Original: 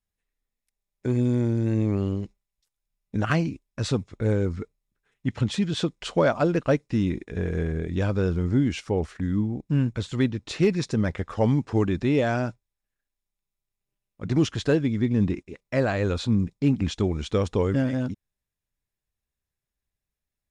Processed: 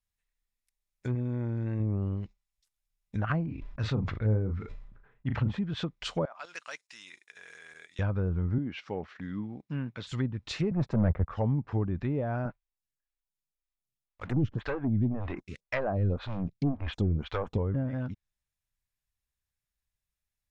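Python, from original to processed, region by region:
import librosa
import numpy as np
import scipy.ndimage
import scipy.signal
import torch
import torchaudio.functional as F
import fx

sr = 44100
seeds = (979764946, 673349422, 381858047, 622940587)

y = fx.chain(x, sr, fx.low_shelf(hz=300.0, db=-5.0),
    fx.env_flatten(amount_pct=50), at=(1.15, 1.8))
y = fx.chain(y, sr, fx.env_lowpass(base_hz=820.0, full_db=-22.0),
    fx.doubler(ms=37.0, db=-8.5),
    fx.sustainer(db_per_s=57.0), at=(3.46, 5.59))
y = fx.chain(y, sr, fx.highpass(hz=1100.0, slope=12),
    fx.high_shelf(hz=5400.0, db=8.0),
    fx.level_steps(step_db=12), at=(6.25, 7.99))
y = fx.chain(y, sr, fx.highpass(hz=200.0, slope=12),
    fx.air_absorb(metres=130.0), at=(8.58, 10.07))
y = fx.chain(y, sr, fx.leveller(passes=3),
    fx.band_widen(depth_pct=100), at=(10.71, 11.29))
y = fx.chain(y, sr, fx.leveller(passes=2),
    fx.stagger_phaser(hz=1.9), at=(12.45, 17.58))
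y = fx.env_lowpass_down(y, sr, base_hz=740.0, full_db=-18.5)
y = fx.peak_eq(y, sr, hz=350.0, db=-10.0, octaves=2.0)
y = F.gain(torch.from_numpy(y), -1.0).numpy()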